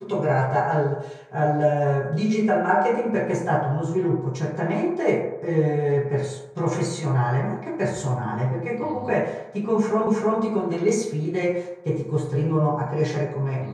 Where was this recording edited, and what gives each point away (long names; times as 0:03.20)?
0:10.07: the same again, the last 0.32 s